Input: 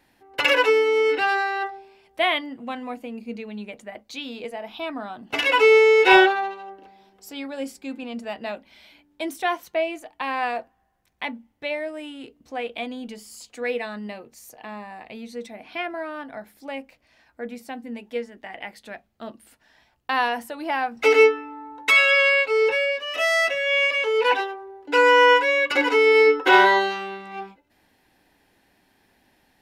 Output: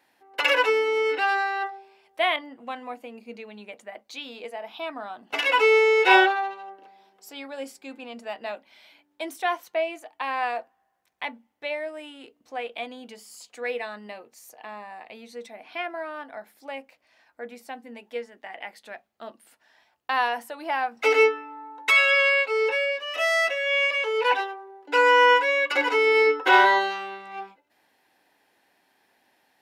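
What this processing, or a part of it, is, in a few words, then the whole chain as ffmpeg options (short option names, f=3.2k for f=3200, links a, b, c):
filter by subtraction: -filter_complex "[0:a]asplit=2[a][b];[b]lowpass=750,volume=-1[c];[a][c]amix=inputs=2:normalize=0,asettb=1/sr,asplit=3[d][e][f];[d]atrim=end=2.364[g];[e]atrim=start=2.36:end=3,asetpts=PTS-STARTPTS,afade=t=in:d=0.004:c=qsin,afade=t=out:st=0.636:d=0.004:c=qsin,adynamicequalizer=threshold=0.00794:dfrequency=1900:dqfactor=0.7:tfrequency=1900:tqfactor=0.7:attack=5:release=100:ratio=0.375:range=2:mode=cutabove:tftype=highshelf[h];[f]atrim=start=2.996[i];[g][h]acrossfade=d=0.004:c1=hsin:c2=qsin[j];[j][i]acrossfade=d=0.004:c1=qsin:c2=hsin,volume=-3dB"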